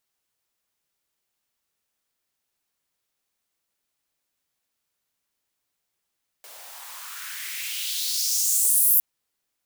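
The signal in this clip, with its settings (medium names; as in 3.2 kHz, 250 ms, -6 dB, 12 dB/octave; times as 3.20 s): swept filtered noise white, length 2.56 s highpass, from 540 Hz, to 13 kHz, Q 2.8, exponential, gain ramp +26.5 dB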